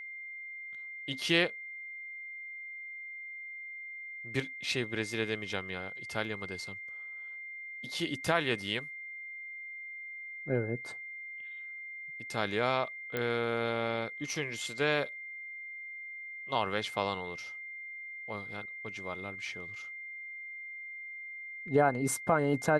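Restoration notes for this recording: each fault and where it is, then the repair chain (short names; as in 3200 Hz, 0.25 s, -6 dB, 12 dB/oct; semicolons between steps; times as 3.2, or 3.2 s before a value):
tone 2100 Hz -41 dBFS
13.17 pop -19 dBFS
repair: de-click; notch 2100 Hz, Q 30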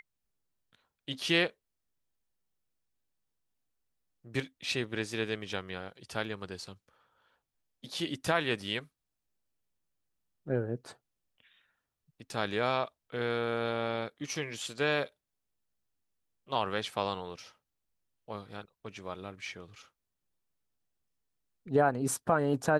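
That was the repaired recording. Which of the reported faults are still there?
none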